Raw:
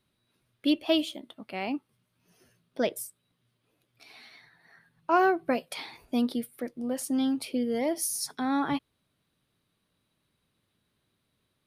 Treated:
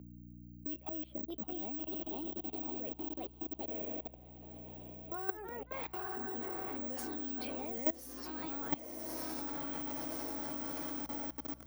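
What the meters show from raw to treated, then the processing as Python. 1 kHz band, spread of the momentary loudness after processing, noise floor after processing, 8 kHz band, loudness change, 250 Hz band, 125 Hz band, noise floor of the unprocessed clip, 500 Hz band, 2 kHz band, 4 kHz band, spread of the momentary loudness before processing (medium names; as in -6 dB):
-12.0 dB, 7 LU, -57 dBFS, -13.0 dB, -10.0 dB, -11.5 dB, -0.5 dB, -77 dBFS, -11.0 dB, -12.0 dB, -15.0 dB, 15 LU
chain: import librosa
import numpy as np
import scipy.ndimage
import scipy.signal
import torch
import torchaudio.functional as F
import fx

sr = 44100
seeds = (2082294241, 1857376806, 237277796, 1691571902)

y = scipy.signal.medfilt(x, 3)
y = fx.auto_swell(y, sr, attack_ms=341.0)
y = fx.env_lowpass(y, sr, base_hz=340.0, full_db=-28.0)
y = fx.echo_diffused(y, sr, ms=1027, feedback_pct=47, wet_db=-4)
y = (np.kron(scipy.signal.resample_poly(y, 1, 2), np.eye(2)[0]) * 2)[:len(y)]
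y = fx.echo_pitch(y, sr, ms=678, semitones=2, count=3, db_per_echo=-6.0)
y = fx.level_steps(y, sr, step_db=23)
y = fx.add_hum(y, sr, base_hz=60, snr_db=20)
y = fx.band_squash(y, sr, depth_pct=70)
y = F.gain(torch.from_numpy(y), 5.0).numpy()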